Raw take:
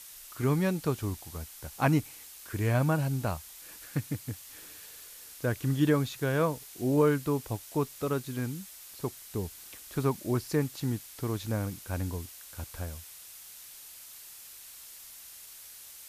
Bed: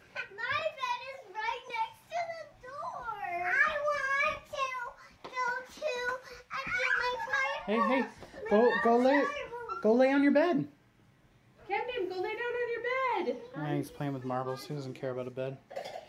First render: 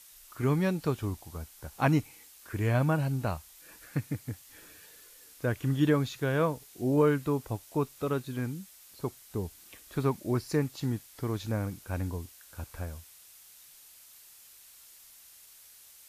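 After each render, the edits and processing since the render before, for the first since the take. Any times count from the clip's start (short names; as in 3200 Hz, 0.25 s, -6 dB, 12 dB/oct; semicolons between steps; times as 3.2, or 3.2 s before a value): noise print and reduce 6 dB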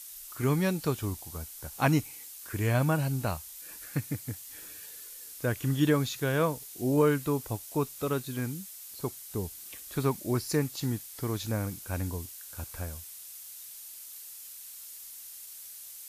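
high shelf 4400 Hz +10.5 dB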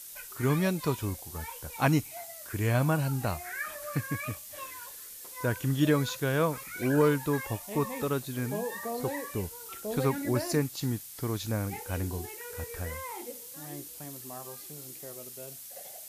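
add bed -10 dB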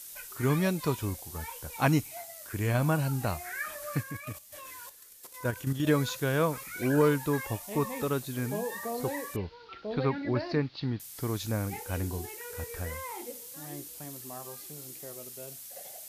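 2.22–2.84 AM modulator 100 Hz, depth 15%; 4.02–5.87 level quantiser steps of 9 dB; 9.36–11 elliptic low-pass 4500 Hz, stop band 50 dB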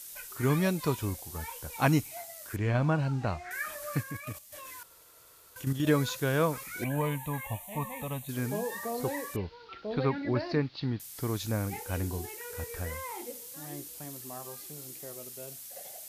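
2.56–3.51 air absorption 140 m; 4.83–5.56 room tone; 6.84–8.29 fixed phaser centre 1400 Hz, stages 6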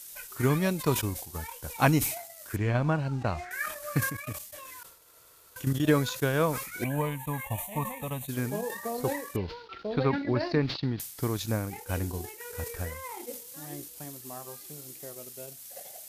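transient shaper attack +4 dB, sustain -11 dB; sustainer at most 81 dB/s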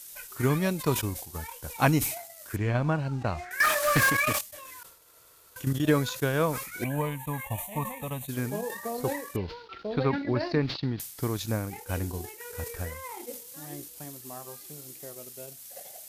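3.6–4.41 overdrive pedal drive 26 dB, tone 4800 Hz, clips at -13 dBFS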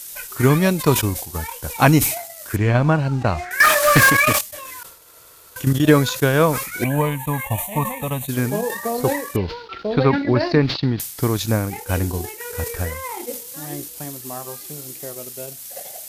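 gain +10 dB; limiter -1 dBFS, peak gain reduction 2 dB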